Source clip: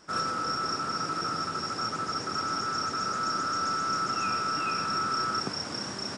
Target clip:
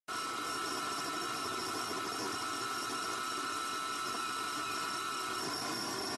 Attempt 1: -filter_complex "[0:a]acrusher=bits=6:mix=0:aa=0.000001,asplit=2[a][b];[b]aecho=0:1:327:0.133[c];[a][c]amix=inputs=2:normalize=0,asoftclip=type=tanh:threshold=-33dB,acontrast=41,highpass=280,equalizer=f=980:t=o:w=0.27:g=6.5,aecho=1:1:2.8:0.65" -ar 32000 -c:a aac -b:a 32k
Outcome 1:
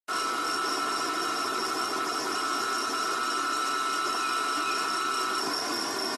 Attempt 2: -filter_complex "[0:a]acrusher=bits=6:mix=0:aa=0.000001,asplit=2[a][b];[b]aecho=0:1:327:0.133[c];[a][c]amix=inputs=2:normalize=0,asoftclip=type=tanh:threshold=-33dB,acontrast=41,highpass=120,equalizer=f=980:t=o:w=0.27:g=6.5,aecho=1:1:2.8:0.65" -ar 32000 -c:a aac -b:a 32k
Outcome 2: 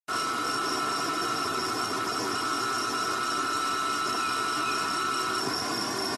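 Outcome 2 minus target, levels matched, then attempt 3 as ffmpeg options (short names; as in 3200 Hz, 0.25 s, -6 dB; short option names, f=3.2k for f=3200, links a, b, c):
soft clip: distortion -5 dB
-filter_complex "[0:a]acrusher=bits=6:mix=0:aa=0.000001,asplit=2[a][b];[b]aecho=0:1:327:0.133[c];[a][c]amix=inputs=2:normalize=0,asoftclip=type=tanh:threshold=-44dB,acontrast=41,highpass=120,equalizer=f=980:t=o:w=0.27:g=6.5,aecho=1:1:2.8:0.65" -ar 32000 -c:a aac -b:a 32k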